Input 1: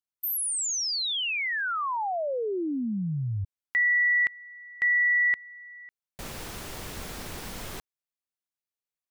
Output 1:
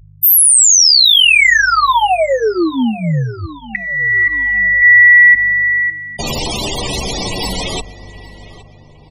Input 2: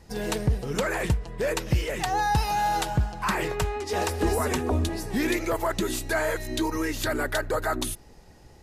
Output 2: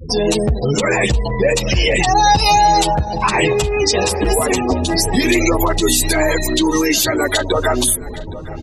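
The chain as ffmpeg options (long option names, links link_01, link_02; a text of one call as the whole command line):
ffmpeg -i in.wav -filter_complex "[0:a]acrossover=split=390[link_01][link_02];[link_02]acompressor=threshold=-46dB:ratio=2:attack=1.6:release=52:knee=2.83:detection=peak[link_03];[link_01][link_03]amix=inputs=2:normalize=0,equalizer=frequency=1500:width_type=o:width=0.83:gain=-10,aeval=exprs='val(0)+0.00158*(sin(2*PI*50*n/s)+sin(2*PI*2*50*n/s)/2+sin(2*PI*3*50*n/s)/3+sin(2*PI*4*50*n/s)/4+sin(2*PI*5*50*n/s)/5)':channel_layout=same,afftfilt=real='re*gte(hypot(re,im),0.00631)':imag='im*gte(hypot(re,im),0.00631)':win_size=1024:overlap=0.75,acompressor=threshold=-45dB:ratio=2:attack=9.5:release=79:knee=1:detection=peak,asoftclip=type=hard:threshold=-29.5dB,tiltshelf=frequency=790:gain=-10,asplit=2[link_04][link_05];[link_05]adelay=817,lowpass=frequency=2800:poles=1,volume=-17dB,asplit=2[link_06][link_07];[link_07]adelay=817,lowpass=frequency=2800:poles=1,volume=0.45,asplit=2[link_08][link_09];[link_09]adelay=817,lowpass=frequency=2800:poles=1,volume=0.45,asplit=2[link_10][link_11];[link_11]adelay=817,lowpass=frequency=2800:poles=1,volume=0.45[link_12];[link_04][link_06][link_08][link_10][link_12]amix=inputs=5:normalize=0,alimiter=level_in=34.5dB:limit=-1dB:release=50:level=0:latency=1,asplit=2[link_13][link_14];[link_14]adelay=9.4,afreqshift=-0.35[link_15];[link_13][link_15]amix=inputs=2:normalize=1,volume=-1dB" out.wav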